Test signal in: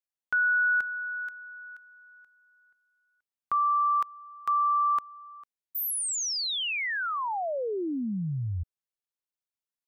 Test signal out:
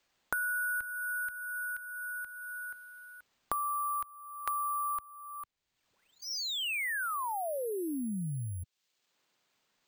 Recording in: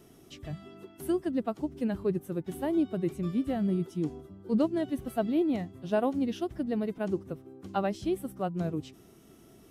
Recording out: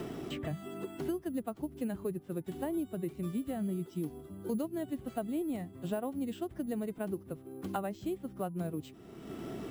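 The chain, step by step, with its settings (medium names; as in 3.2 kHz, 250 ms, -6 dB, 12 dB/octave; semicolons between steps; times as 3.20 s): careless resampling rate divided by 4×, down filtered, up hold; three bands compressed up and down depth 100%; trim -6.5 dB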